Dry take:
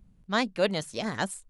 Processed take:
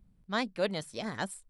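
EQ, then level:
notch filter 2,800 Hz, Q 22
notch filter 6,600 Hz, Q 7.8
−5.0 dB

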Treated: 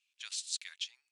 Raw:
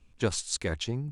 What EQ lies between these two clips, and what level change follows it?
four-pole ladder high-pass 2,200 Hz, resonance 25%
high-shelf EQ 6,700 Hz −5.5 dB
+2.5 dB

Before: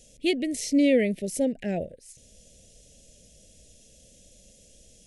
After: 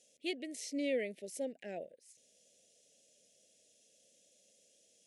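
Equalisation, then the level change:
resonant band-pass 370 Hz, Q 0.67
first difference
+11.5 dB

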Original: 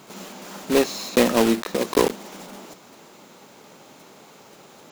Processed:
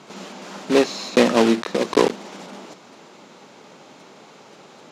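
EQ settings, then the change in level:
band-pass filter 120–6,000 Hz
+2.5 dB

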